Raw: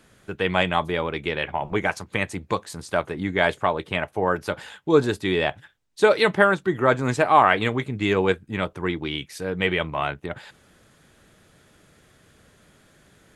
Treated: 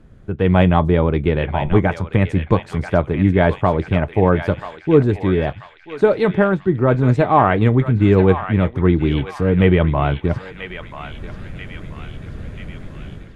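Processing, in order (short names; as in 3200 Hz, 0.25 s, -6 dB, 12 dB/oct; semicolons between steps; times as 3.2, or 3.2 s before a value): tilt -4.5 dB/oct; AGC gain up to 14 dB; narrowing echo 0.986 s, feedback 64%, band-pass 2800 Hz, level -6 dB; gain -1 dB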